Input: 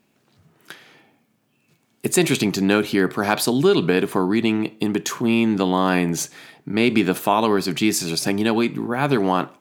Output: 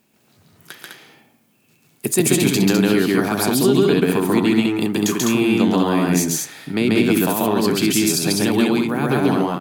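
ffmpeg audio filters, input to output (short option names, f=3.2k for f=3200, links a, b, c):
-filter_complex "[0:a]acrossover=split=420[a][b];[b]acompressor=threshold=-24dB:ratio=6[c];[a][c]amix=inputs=2:normalize=0,aecho=1:1:137|204.1:1|0.708,crystalizer=i=1:c=0"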